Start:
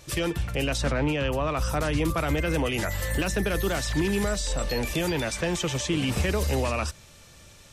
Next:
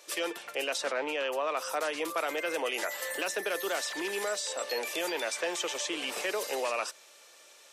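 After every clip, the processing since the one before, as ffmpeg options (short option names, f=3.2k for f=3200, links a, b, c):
-af "highpass=f=410:w=0.5412,highpass=f=410:w=1.3066,volume=-2.5dB"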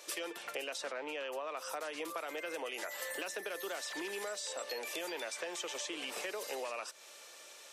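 -af "acompressor=threshold=-40dB:ratio=6,volume=2dB"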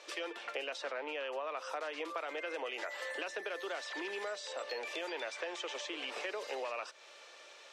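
-af "highpass=310,lowpass=4.1k,volume=1.5dB"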